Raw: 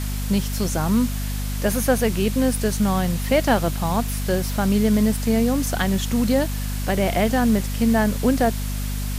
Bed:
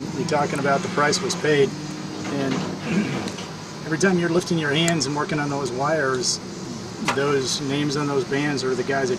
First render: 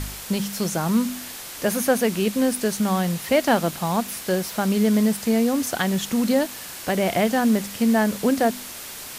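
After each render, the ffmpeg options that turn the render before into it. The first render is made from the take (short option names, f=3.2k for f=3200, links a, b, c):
-af "bandreject=f=50:t=h:w=4,bandreject=f=100:t=h:w=4,bandreject=f=150:t=h:w=4,bandreject=f=200:t=h:w=4,bandreject=f=250:t=h:w=4"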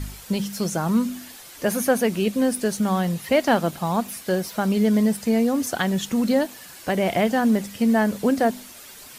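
-af "afftdn=nr=9:nf=-37"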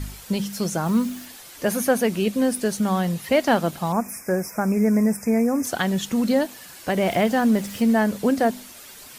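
-filter_complex "[0:a]asettb=1/sr,asplit=3[a][b][c];[a]atrim=end=0.864[d];[b]atrim=start=0.86:end=1.26,asetpts=PTS-STARTPTS,afade=t=in:d=0.004:c=qsin,afade=t=out:st=0.396:d=0.004:c=qsin,acrusher=bits=8:dc=4:mix=0:aa=0.000001[e];[c]atrim=start=1.256[f];[d][e]acrossfade=d=0.004:c1=hsin:c2=qsin[g];[g][f]acrossfade=d=0.004:c1=qsin:c2=hsin,asettb=1/sr,asplit=3[h][i][j];[h]atrim=end=3.924[k];[i]atrim=start=3.92:end=5.65,asetpts=PTS-STARTPTS,afade=t=in:d=0.004:c=qsin,afade=t=out:st=1.726:d=0.004:c=qsin,asuperstop=centerf=3600:order=20:qfactor=1.5[l];[j]atrim=start=5.646[m];[k][l]acrossfade=d=0.004:c1=hsin:c2=qsin[n];[n][m]acrossfade=d=0.004:c1=qsin:c2=hsin,asettb=1/sr,asplit=3[o][p][q];[o]atrim=end=6.964[r];[p]atrim=start=6.96:end=7.92,asetpts=PTS-STARTPTS,afade=t=in:d=0.004:c=qsin,afade=t=out:st=0.956:d=0.004:c=qsin,aeval=exprs='val(0)+0.5*0.015*sgn(val(0))':c=same[s];[q]atrim=start=7.916[t];[r][s]acrossfade=d=0.004:c1=hsin:c2=qsin[u];[u][t]acrossfade=d=0.004:c1=qsin:c2=hsin"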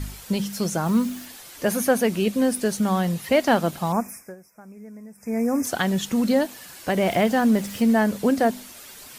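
-filter_complex "[0:a]asplit=3[a][b][c];[a]atrim=end=4.35,asetpts=PTS-STARTPTS,afade=t=out:st=3.95:d=0.4:silence=0.0749894[d];[b]atrim=start=4.35:end=5.15,asetpts=PTS-STARTPTS,volume=-22.5dB[e];[c]atrim=start=5.15,asetpts=PTS-STARTPTS,afade=t=in:d=0.4:silence=0.0749894[f];[d][e][f]concat=n=3:v=0:a=1"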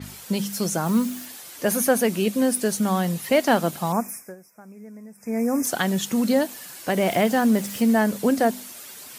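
-af "highpass=120,adynamicequalizer=threshold=0.00631:dfrequency=6100:dqfactor=0.7:tfrequency=6100:tqfactor=0.7:attack=5:release=100:ratio=0.375:range=2.5:mode=boostabove:tftype=highshelf"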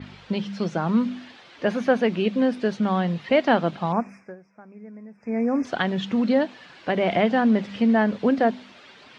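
-af "lowpass=f=3.7k:w=0.5412,lowpass=f=3.7k:w=1.3066,bandreject=f=48.9:t=h:w=4,bandreject=f=97.8:t=h:w=4,bandreject=f=146.7:t=h:w=4,bandreject=f=195.6:t=h:w=4"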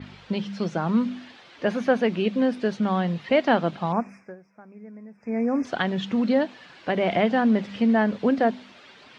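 -af "volume=-1dB"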